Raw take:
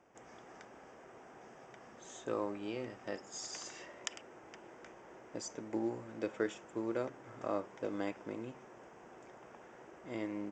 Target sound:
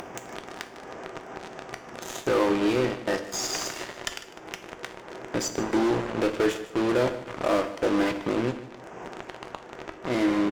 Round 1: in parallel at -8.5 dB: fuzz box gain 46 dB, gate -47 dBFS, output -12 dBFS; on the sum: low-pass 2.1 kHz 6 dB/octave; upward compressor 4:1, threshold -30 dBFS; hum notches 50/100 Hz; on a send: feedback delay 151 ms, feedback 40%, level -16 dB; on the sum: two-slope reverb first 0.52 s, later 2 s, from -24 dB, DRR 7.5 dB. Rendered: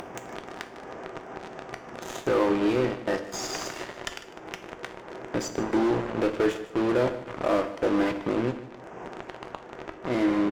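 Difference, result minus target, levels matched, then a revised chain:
4 kHz band -3.5 dB
in parallel at -8.5 dB: fuzz box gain 46 dB, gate -47 dBFS, output -12 dBFS; on the sum: low-pass 5 kHz 6 dB/octave; upward compressor 4:1, threshold -30 dBFS; hum notches 50/100 Hz; on a send: feedback delay 151 ms, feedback 40%, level -16 dB; on the sum: two-slope reverb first 0.52 s, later 2 s, from -24 dB, DRR 7.5 dB

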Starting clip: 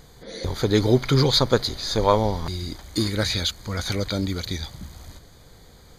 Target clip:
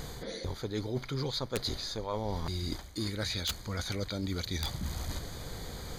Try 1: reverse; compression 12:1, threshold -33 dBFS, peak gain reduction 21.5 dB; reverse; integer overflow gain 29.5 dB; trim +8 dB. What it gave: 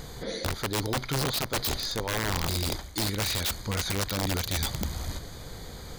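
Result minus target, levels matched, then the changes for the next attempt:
compression: peak gain reduction -6 dB
change: compression 12:1, threshold -39.5 dBFS, peak gain reduction 27.5 dB

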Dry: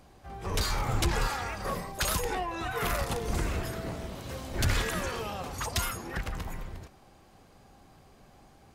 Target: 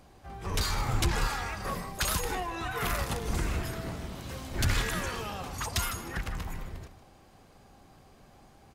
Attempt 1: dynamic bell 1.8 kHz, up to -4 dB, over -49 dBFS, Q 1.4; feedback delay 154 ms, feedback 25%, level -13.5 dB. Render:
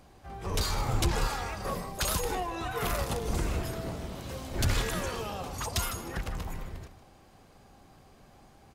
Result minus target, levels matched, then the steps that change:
500 Hz band +3.0 dB
change: dynamic bell 530 Hz, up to -4 dB, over -49 dBFS, Q 1.4

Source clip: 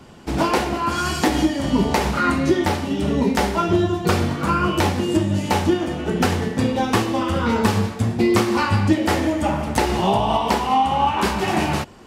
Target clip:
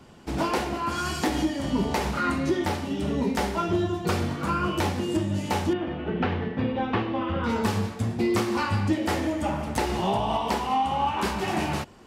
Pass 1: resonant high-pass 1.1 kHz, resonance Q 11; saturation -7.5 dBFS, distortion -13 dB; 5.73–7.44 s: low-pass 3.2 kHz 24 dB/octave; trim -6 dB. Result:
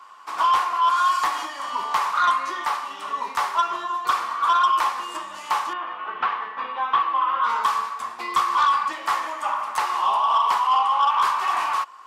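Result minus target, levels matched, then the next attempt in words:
1 kHz band +5.0 dB
saturation -7.5 dBFS, distortion -24 dB; 5.73–7.44 s: low-pass 3.2 kHz 24 dB/octave; trim -6 dB

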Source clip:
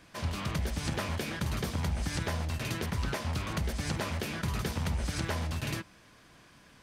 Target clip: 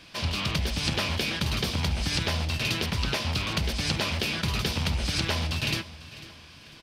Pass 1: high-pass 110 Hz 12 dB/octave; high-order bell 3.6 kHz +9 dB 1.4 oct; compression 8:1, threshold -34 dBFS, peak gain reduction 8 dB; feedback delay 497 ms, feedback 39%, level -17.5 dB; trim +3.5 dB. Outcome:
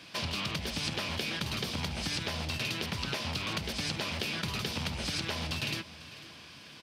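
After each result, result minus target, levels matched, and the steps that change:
compression: peak gain reduction +8 dB; 125 Hz band -3.0 dB
remove: compression 8:1, threshold -34 dBFS, peak gain reduction 8 dB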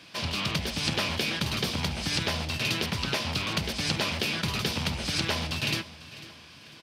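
125 Hz band -3.0 dB
remove: high-pass 110 Hz 12 dB/octave

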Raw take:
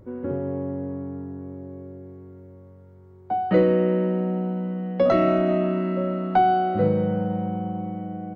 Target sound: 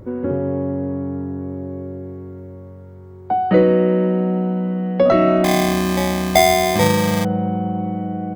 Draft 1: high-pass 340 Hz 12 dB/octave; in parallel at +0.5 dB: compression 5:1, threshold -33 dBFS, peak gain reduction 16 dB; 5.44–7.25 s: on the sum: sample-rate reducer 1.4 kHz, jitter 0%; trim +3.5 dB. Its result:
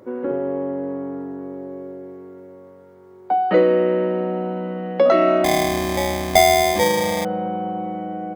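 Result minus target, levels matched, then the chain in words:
250 Hz band -4.5 dB
in parallel at +0.5 dB: compression 5:1, threshold -33 dBFS, peak gain reduction 17 dB; 5.44–7.25 s: on the sum: sample-rate reducer 1.4 kHz, jitter 0%; trim +3.5 dB

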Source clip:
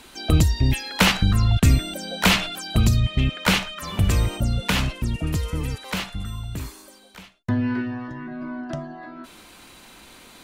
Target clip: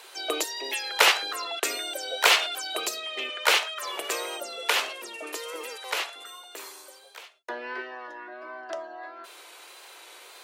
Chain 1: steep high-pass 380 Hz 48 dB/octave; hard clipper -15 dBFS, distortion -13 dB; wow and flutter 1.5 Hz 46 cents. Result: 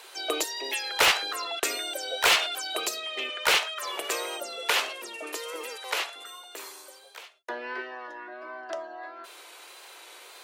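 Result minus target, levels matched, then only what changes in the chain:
hard clipper: distortion +15 dB
change: hard clipper -7.5 dBFS, distortion -28 dB

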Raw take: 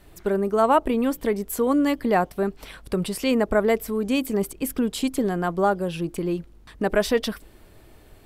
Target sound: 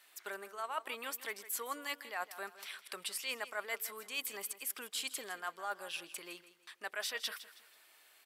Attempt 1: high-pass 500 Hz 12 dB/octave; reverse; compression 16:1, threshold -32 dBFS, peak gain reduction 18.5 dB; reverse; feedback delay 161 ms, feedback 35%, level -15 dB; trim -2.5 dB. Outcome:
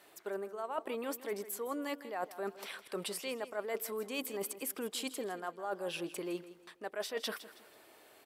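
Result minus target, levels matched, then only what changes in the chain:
500 Hz band +8.0 dB
change: high-pass 1.5 kHz 12 dB/octave

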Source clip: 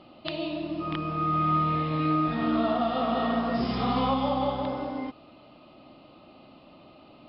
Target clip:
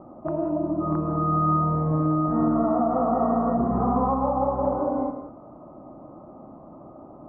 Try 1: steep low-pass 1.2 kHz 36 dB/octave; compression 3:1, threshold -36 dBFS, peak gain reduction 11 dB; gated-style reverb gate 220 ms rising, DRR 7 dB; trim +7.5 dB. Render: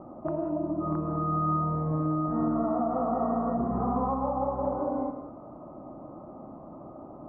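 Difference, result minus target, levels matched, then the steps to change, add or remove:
compression: peak gain reduction +5.5 dB
change: compression 3:1, threshold -28 dBFS, peak gain reduction 5.5 dB

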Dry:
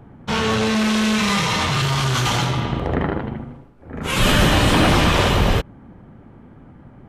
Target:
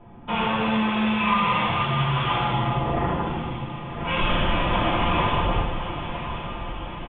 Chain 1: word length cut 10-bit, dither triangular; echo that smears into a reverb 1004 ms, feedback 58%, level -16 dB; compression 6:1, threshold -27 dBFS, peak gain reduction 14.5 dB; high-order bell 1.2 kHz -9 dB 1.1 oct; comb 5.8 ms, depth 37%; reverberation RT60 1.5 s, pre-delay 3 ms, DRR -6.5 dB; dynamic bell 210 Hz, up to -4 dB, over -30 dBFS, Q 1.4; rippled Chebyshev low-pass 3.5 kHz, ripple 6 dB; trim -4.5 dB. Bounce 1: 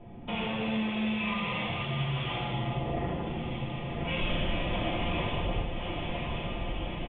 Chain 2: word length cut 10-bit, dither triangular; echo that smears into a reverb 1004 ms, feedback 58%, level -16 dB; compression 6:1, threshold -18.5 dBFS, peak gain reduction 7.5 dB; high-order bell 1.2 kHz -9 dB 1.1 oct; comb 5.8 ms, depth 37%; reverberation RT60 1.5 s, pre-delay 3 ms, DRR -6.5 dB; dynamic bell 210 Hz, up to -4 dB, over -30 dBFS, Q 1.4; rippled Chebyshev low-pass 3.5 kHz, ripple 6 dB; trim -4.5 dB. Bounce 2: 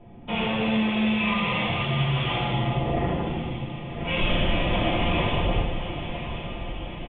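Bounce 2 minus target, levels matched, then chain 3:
1 kHz band -5.0 dB
word length cut 10-bit, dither triangular; echo that smears into a reverb 1004 ms, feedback 58%, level -16 dB; compression 6:1, threshold -18.5 dBFS, peak gain reduction 7.5 dB; comb 5.8 ms, depth 37%; reverberation RT60 1.5 s, pre-delay 3 ms, DRR -6.5 dB; dynamic bell 210 Hz, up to -4 dB, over -30 dBFS, Q 1.4; rippled Chebyshev low-pass 3.5 kHz, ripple 6 dB; trim -4.5 dB

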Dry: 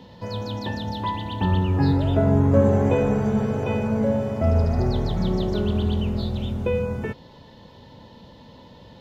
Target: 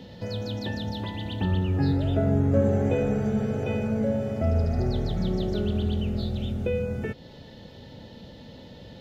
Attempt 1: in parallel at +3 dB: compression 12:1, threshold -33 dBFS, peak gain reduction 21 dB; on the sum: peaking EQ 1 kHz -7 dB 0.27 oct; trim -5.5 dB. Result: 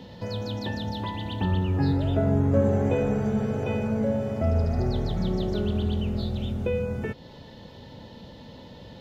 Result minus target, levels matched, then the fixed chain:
1 kHz band +2.5 dB
in parallel at +3 dB: compression 12:1, threshold -33 dBFS, peak gain reduction 21 dB; on the sum: peaking EQ 1 kHz -16 dB 0.27 oct; trim -5.5 dB

